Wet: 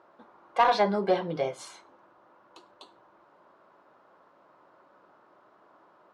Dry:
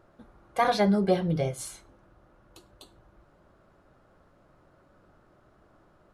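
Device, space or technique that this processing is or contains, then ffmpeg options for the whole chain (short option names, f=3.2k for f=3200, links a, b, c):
intercom: -af "highpass=330,lowpass=4.8k,equalizer=f=980:t=o:w=0.43:g=9,asoftclip=type=tanh:threshold=-14dB,volume=1.5dB"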